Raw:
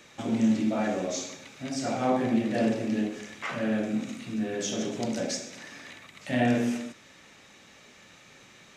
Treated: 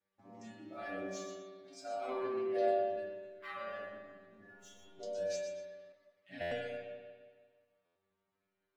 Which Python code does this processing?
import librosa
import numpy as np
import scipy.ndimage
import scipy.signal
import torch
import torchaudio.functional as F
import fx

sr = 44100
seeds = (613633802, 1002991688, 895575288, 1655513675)

y = fx.wiener(x, sr, points=15)
y = fx.tube_stage(y, sr, drive_db=39.0, bias=0.7, at=(4.49, 4.94), fade=0.02)
y = scipy.signal.sosfilt(scipy.signal.butter(2, 7100.0, 'lowpass', fs=sr, output='sos'), y)
y = np.sign(y) * np.maximum(np.abs(y) - 10.0 ** (-58.0 / 20.0), 0.0)
y = fx.stiff_resonator(y, sr, f0_hz=95.0, decay_s=0.63, stiffness=0.002)
y = fx.echo_thinned(y, sr, ms=122, feedback_pct=37, hz=420.0, wet_db=-8)
y = fx.noise_reduce_blind(y, sr, reduce_db=13)
y = fx.low_shelf(y, sr, hz=180.0, db=-10.5, at=(0.9, 2.09))
y = fx.rev_spring(y, sr, rt60_s=1.6, pass_ms=(44, 57), chirp_ms=40, drr_db=0.5)
y = fx.buffer_glitch(y, sr, at_s=(6.41, 7.85), block=512, repeats=8)
y = fx.ensemble(y, sr, at=(5.92, 6.41))
y = F.gain(torch.from_numpy(y), 2.0).numpy()